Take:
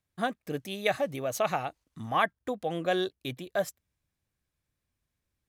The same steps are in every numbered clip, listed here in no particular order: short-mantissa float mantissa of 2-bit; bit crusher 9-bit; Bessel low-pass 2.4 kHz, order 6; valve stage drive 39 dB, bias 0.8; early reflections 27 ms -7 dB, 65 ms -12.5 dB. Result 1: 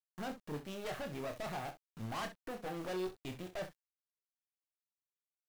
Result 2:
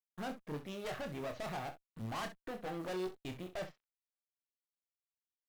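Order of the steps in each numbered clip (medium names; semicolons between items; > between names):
Bessel low-pass > valve stage > short-mantissa float > bit crusher > early reflections; bit crusher > Bessel low-pass > short-mantissa float > valve stage > early reflections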